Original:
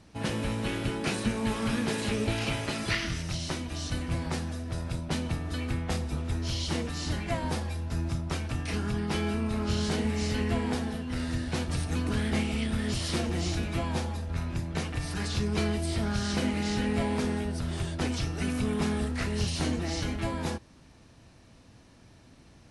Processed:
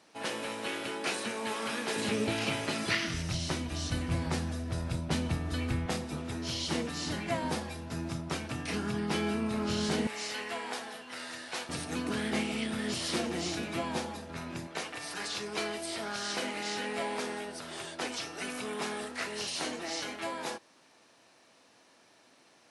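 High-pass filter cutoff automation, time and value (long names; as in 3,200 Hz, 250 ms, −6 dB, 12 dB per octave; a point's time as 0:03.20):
430 Hz
from 0:01.96 170 Hz
from 0:03.14 57 Hz
from 0:05.86 160 Hz
from 0:10.07 680 Hz
from 0:11.69 230 Hz
from 0:14.67 470 Hz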